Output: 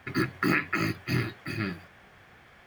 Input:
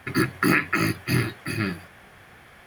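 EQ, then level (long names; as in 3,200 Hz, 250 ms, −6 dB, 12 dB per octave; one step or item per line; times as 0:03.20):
parametric band 11,000 Hz −13.5 dB 0.38 octaves
−5.0 dB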